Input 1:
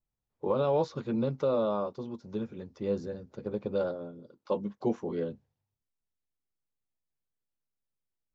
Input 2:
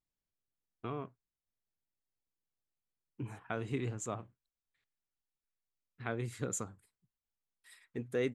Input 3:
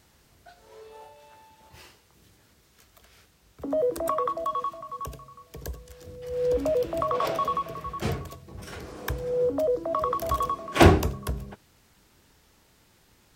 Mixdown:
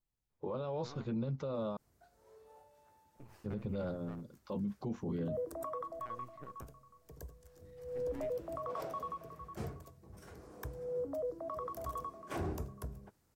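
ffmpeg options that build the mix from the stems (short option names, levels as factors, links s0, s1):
-filter_complex "[0:a]asubboost=boost=5.5:cutoff=190,volume=0.75,asplit=3[s0][s1][s2];[s0]atrim=end=1.77,asetpts=PTS-STARTPTS,afade=t=out:st=1.766:d=0.004:c=hsin[s3];[s1]atrim=start=1.77:end=3.44,asetpts=PTS-STARTPTS,volume=0[s4];[s2]atrim=start=3.44,asetpts=PTS-STARTPTS,afade=t=in:d=0.004:c=hsin[s5];[s3][s4][s5]concat=n=3:v=0:a=1[s6];[1:a]lowpass=f=2500:w=0.5412,lowpass=f=2500:w=1.3066,alimiter=level_in=1.26:limit=0.0631:level=0:latency=1:release=426,volume=0.794,aeval=exprs='max(val(0),0)':c=same,volume=0.316[s7];[2:a]equalizer=f=3100:t=o:w=1.5:g=-10,adelay=1550,volume=0.237[s8];[s6][s7][s8]amix=inputs=3:normalize=0,alimiter=level_in=2:limit=0.0631:level=0:latency=1:release=38,volume=0.501"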